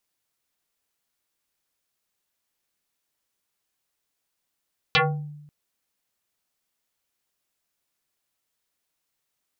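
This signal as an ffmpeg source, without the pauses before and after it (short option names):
-f lavfi -i "aevalsrc='0.2*pow(10,-3*t/0.96)*sin(2*PI*148*t+7*pow(10,-3*t/0.39)*sin(2*PI*4.27*148*t))':d=0.54:s=44100"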